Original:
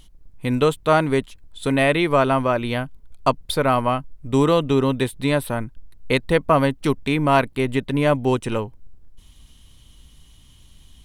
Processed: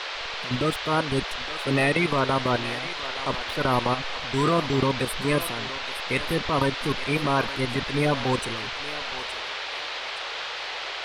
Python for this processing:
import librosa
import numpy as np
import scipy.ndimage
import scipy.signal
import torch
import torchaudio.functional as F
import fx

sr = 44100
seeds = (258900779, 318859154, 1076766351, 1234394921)

p1 = fx.spec_quant(x, sr, step_db=30)
p2 = fx.level_steps(p1, sr, step_db=21)
p3 = fx.transient(p2, sr, attack_db=-5, sustain_db=9)
p4 = p3 + fx.echo_thinned(p3, sr, ms=869, feedback_pct=45, hz=600.0, wet_db=-11.0, dry=0)
y = fx.dmg_noise_band(p4, sr, seeds[0], low_hz=440.0, high_hz=4100.0, level_db=-33.0)